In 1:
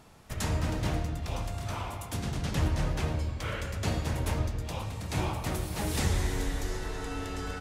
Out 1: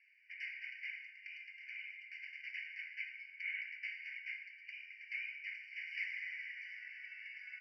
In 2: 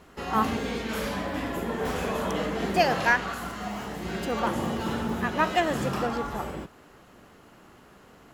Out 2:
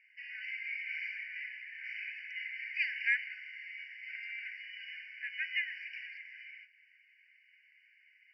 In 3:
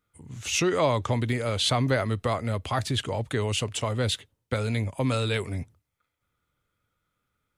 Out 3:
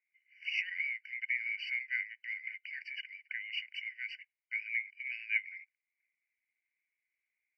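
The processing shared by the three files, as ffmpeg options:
ffmpeg -i in.wav -filter_complex "[0:a]asplit=3[link_01][link_02][link_03];[link_01]bandpass=frequency=270:width_type=q:width=8,volume=0dB[link_04];[link_02]bandpass=frequency=2290:width_type=q:width=8,volume=-6dB[link_05];[link_03]bandpass=frequency=3010:width_type=q:width=8,volume=-9dB[link_06];[link_04][link_05][link_06]amix=inputs=3:normalize=0,highpass=170,equalizer=frequency=210:width_type=q:width=4:gain=-4,equalizer=frequency=320:width_type=q:width=4:gain=-5,equalizer=frequency=510:width_type=q:width=4:gain=6,equalizer=frequency=980:width_type=q:width=4:gain=7,equalizer=frequency=1400:width_type=q:width=4:gain=4,equalizer=frequency=2100:width_type=q:width=4:gain=9,lowpass=frequency=4400:width=0.5412,lowpass=frequency=4400:width=1.3066,afftfilt=real='re*eq(mod(floor(b*sr/1024/1500),2),1)':imag='im*eq(mod(floor(b*sr/1024/1500),2),1)':win_size=1024:overlap=0.75,volume=5dB" out.wav

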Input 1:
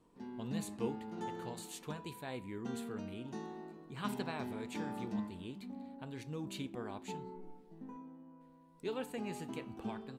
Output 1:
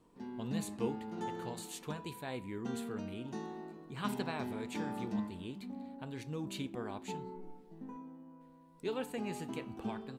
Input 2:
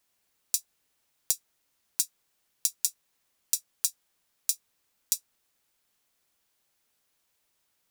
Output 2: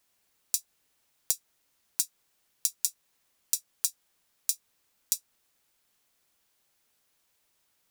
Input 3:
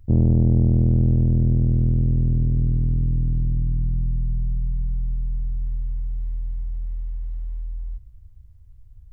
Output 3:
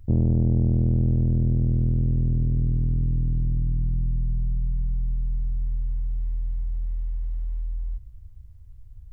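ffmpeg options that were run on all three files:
ffmpeg -i in.wav -af "acompressor=threshold=-29dB:ratio=1.5,volume=2dB" out.wav

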